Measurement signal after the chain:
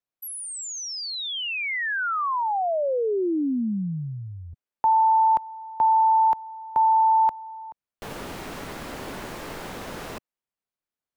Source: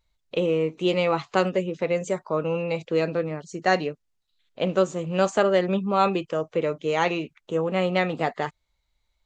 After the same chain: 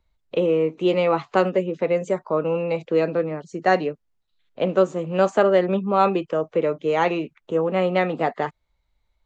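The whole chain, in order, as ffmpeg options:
-filter_complex "[0:a]highshelf=f=2.9k:g=-12,acrossover=split=170|1100[a][b][c];[a]acompressor=threshold=-48dB:ratio=6[d];[d][b][c]amix=inputs=3:normalize=0,volume=4dB"

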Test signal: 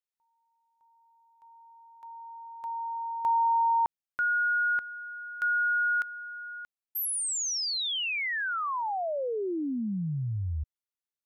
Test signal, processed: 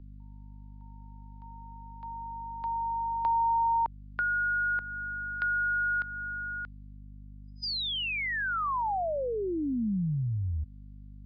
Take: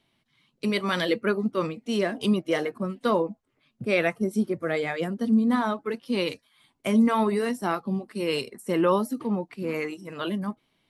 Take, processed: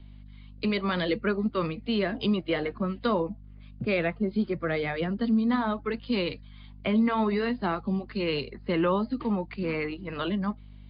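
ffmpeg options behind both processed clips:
-filter_complex "[0:a]aeval=exprs='val(0)+0.00316*(sin(2*PI*50*n/s)+sin(2*PI*2*50*n/s)/2+sin(2*PI*3*50*n/s)/3+sin(2*PI*4*50*n/s)/4+sin(2*PI*5*50*n/s)/5)':c=same,acrossover=split=200|980[a][b][c];[a]acompressor=threshold=-36dB:ratio=2.5[d];[b]acompressor=threshold=-46dB:ratio=1.5[e];[c]acompressor=threshold=-39dB:ratio=2.5[f];[d][e][f]amix=inputs=3:normalize=0,volume=5dB" -ar 11025 -c:a libmp3lame -b:a 56k

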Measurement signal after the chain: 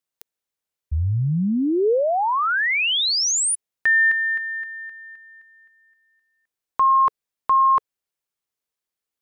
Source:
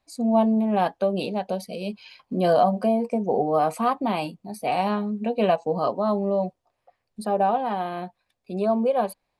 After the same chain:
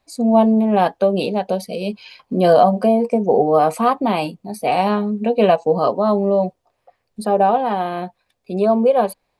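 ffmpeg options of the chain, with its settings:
-af "equalizer=f=450:w=3.1:g=3.5,volume=6dB"

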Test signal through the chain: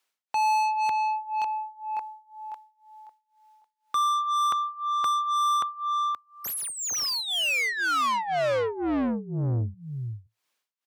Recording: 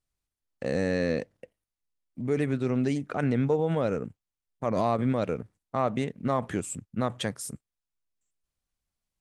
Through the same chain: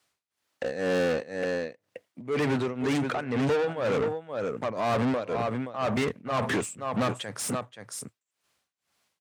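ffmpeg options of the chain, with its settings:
-filter_complex "[0:a]adynamicequalizer=threshold=0.00355:dfrequency=110:dqfactor=3.7:tfrequency=110:tqfactor=3.7:attack=5:release=100:ratio=0.375:range=4:mode=boostabove:tftype=bell,asplit=2[a][b];[b]aecho=0:1:525:0.237[c];[a][c]amix=inputs=2:normalize=0,tremolo=f=2:d=0.94,asplit=2[d][e];[e]highpass=f=720:p=1,volume=31dB,asoftclip=type=tanh:threshold=-15dB[f];[d][f]amix=inputs=2:normalize=0,lowpass=f=4k:p=1,volume=-6dB,highpass=f=68:w=0.5412,highpass=f=68:w=1.3066,volume=-3.5dB"

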